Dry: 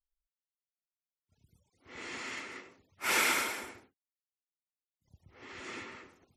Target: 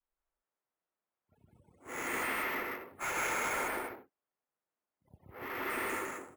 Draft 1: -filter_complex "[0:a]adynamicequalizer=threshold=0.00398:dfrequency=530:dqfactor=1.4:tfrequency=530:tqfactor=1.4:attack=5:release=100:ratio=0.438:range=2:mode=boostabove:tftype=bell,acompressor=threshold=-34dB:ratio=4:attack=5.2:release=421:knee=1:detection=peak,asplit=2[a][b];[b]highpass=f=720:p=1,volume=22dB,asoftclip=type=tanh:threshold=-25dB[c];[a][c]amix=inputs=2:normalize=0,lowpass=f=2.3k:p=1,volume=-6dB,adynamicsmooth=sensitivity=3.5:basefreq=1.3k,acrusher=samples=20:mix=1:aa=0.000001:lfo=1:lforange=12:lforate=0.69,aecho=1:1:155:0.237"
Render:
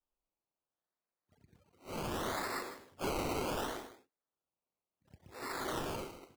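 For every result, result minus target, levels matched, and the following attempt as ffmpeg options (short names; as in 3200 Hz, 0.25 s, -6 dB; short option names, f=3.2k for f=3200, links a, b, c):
decimation with a swept rate: distortion +23 dB; echo-to-direct -11.5 dB
-filter_complex "[0:a]adynamicequalizer=threshold=0.00398:dfrequency=530:dqfactor=1.4:tfrequency=530:tqfactor=1.4:attack=5:release=100:ratio=0.438:range=2:mode=boostabove:tftype=bell,acompressor=threshold=-34dB:ratio=4:attack=5.2:release=421:knee=1:detection=peak,asplit=2[a][b];[b]highpass=f=720:p=1,volume=22dB,asoftclip=type=tanh:threshold=-25dB[c];[a][c]amix=inputs=2:normalize=0,lowpass=f=2.3k:p=1,volume=-6dB,adynamicsmooth=sensitivity=3.5:basefreq=1.3k,acrusher=samples=4:mix=1:aa=0.000001:lfo=1:lforange=2.4:lforate=0.69,aecho=1:1:155:0.237"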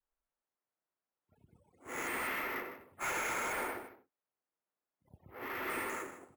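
echo-to-direct -11.5 dB
-filter_complex "[0:a]adynamicequalizer=threshold=0.00398:dfrequency=530:dqfactor=1.4:tfrequency=530:tqfactor=1.4:attack=5:release=100:ratio=0.438:range=2:mode=boostabove:tftype=bell,acompressor=threshold=-34dB:ratio=4:attack=5.2:release=421:knee=1:detection=peak,asplit=2[a][b];[b]highpass=f=720:p=1,volume=22dB,asoftclip=type=tanh:threshold=-25dB[c];[a][c]amix=inputs=2:normalize=0,lowpass=f=2.3k:p=1,volume=-6dB,adynamicsmooth=sensitivity=3.5:basefreq=1.3k,acrusher=samples=4:mix=1:aa=0.000001:lfo=1:lforange=2.4:lforate=0.69,aecho=1:1:155:0.891"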